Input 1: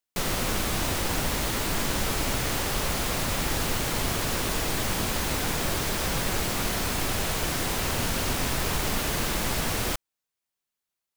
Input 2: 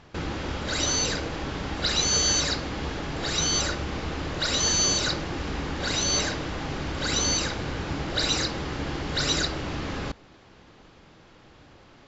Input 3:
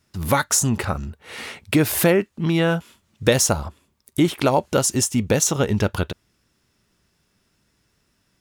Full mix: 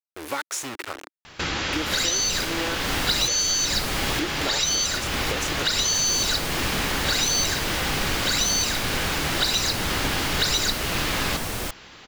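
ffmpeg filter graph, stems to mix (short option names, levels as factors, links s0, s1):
-filter_complex "[0:a]adelay=1750,volume=0.841[s0];[1:a]aemphasis=mode=production:type=75kf,adelay=1250,volume=1[s1];[2:a]acrusher=bits=3:mix=0:aa=0.000001,lowshelf=f=240:t=q:w=3:g=-8,volume=0.178,asplit=2[s2][s3];[s3]apad=whole_len=569547[s4];[s0][s4]sidechaincompress=threshold=0.02:ratio=8:attack=9.6:release=343[s5];[s1][s2]amix=inputs=2:normalize=0,equalizer=f=2200:t=o:w=2.9:g=9,acompressor=threshold=0.0794:ratio=5,volume=1[s6];[s5][s6]amix=inputs=2:normalize=0"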